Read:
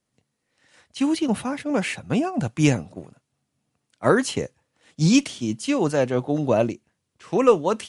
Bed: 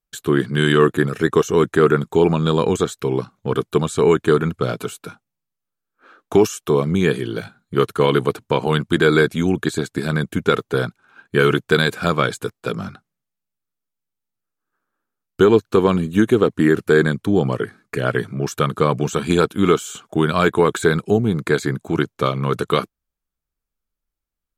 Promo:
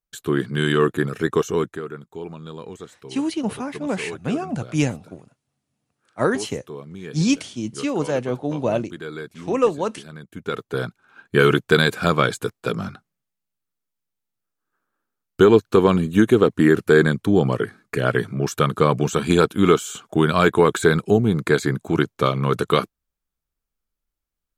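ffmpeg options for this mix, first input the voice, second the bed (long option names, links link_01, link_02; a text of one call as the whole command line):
ffmpeg -i stem1.wav -i stem2.wav -filter_complex "[0:a]adelay=2150,volume=-2dB[link_01];[1:a]volume=14.5dB,afade=type=out:start_time=1.51:duration=0.31:silence=0.188365,afade=type=in:start_time=10.28:duration=1.01:silence=0.11885[link_02];[link_01][link_02]amix=inputs=2:normalize=0" out.wav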